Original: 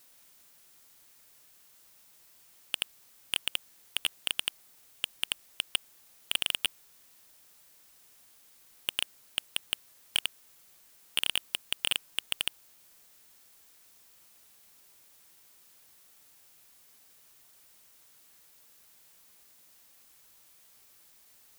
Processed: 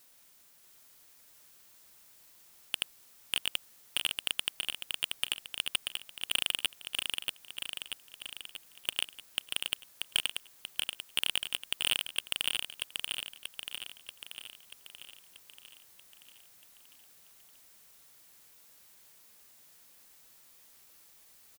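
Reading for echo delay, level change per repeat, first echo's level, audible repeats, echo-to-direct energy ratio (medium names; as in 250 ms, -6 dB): 635 ms, -4.5 dB, -4.0 dB, 7, -2.0 dB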